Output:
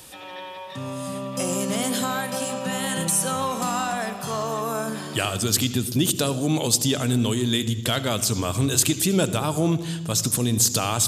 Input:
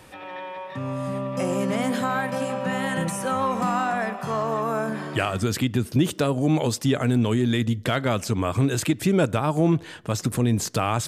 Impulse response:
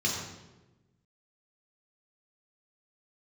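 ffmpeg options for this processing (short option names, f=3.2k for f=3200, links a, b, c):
-filter_complex "[0:a]aexciter=amount=3.9:drive=4.7:freq=3k,asplit=2[a][b];[1:a]atrim=start_sample=2205,adelay=72[c];[b][c]afir=irnorm=-1:irlink=0,volume=-22dB[d];[a][d]amix=inputs=2:normalize=0,volume=-2dB"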